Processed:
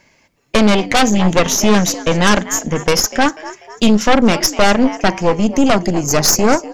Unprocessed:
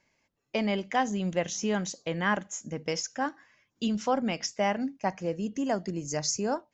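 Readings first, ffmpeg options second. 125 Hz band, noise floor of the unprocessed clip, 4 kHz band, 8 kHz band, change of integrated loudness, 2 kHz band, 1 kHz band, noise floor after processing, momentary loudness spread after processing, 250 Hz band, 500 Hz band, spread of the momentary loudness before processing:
+16.5 dB, -76 dBFS, +18.5 dB, n/a, +16.5 dB, +16.0 dB, +14.5 dB, -55 dBFS, 5 LU, +17.0 dB, +15.5 dB, 6 LU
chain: -filter_complex "[0:a]asplit=5[a][b][c][d][e];[b]adelay=245,afreqshift=73,volume=-18.5dB[f];[c]adelay=490,afreqshift=146,volume=-25.1dB[g];[d]adelay=735,afreqshift=219,volume=-31.6dB[h];[e]adelay=980,afreqshift=292,volume=-38.2dB[i];[a][f][g][h][i]amix=inputs=5:normalize=0,aeval=exprs='0.211*(cos(1*acos(clip(val(0)/0.211,-1,1)))-cos(1*PI/2))+0.075*(cos(4*acos(clip(val(0)/0.211,-1,1)))-cos(4*PI/2))':c=same,aeval=exprs='0.316*sin(PI/2*2.24*val(0)/0.316)':c=same,volume=7.5dB"

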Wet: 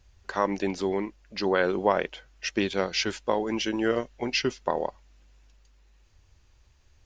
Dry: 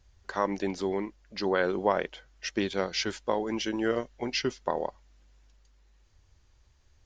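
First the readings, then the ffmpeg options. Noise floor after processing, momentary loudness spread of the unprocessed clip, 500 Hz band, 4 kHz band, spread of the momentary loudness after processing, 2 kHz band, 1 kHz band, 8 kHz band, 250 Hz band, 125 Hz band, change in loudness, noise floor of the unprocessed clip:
-60 dBFS, 8 LU, +2.5 dB, +3.0 dB, 8 LU, +3.5 dB, +2.5 dB, n/a, +2.5 dB, +2.5 dB, +2.5 dB, -63 dBFS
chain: -af "equalizer=f=2.6k:t=o:w=0.25:g=4.5,volume=2.5dB"

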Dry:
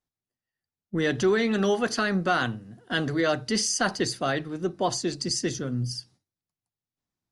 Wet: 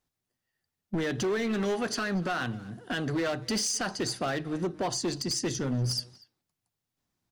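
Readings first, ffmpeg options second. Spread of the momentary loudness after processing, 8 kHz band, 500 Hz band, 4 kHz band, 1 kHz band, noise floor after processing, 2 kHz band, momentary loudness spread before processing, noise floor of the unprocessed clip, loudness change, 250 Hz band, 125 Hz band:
5 LU, -2.5 dB, -5.0 dB, -3.0 dB, -5.5 dB, under -85 dBFS, -5.5 dB, 8 LU, under -85 dBFS, -4.0 dB, -3.5 dB, -1.5 dB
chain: -filter_complex "[0:a]asplit=2[a][b];[b]acompressor=threshold=-33dB:ratio=6,volume=1dB[c];[a][c]amix=inputs=2:normalize=0,alimiter=limit=-18.5dB:level=0:latency=1:release=421,volume=25dB,asoftclip=hard,volume=-25dB,asplit=2[d][e];[e]adelay=240,highpass=300,lowpass=3.4k,asoftclip=type=hard:threshold=-34dB,volume=-16dB[f];[d][f]amix=inputs=2:normalize=0"

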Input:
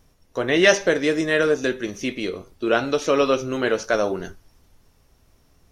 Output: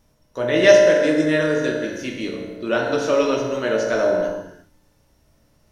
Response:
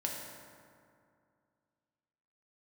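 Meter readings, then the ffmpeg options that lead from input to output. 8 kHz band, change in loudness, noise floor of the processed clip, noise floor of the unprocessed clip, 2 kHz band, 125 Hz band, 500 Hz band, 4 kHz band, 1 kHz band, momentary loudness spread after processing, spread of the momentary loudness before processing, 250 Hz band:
-1.5 dB, +2.5 dB, -61 dBFS, -60 dBFS, -0.5 dB, +2.5 dB, +4.0 dB, -1.0 dB, -0.5 dB, 16 LU, 13 LU, +2.0 dB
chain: -filter_complex "[1:a]atrim=start_sample=2205,afade=t=out:st=0.42:d=0.01,atrim=end_sample=18963[a];[0:a][a]afir=irnorm=-1:irlink=0,volume=-2.5dB"

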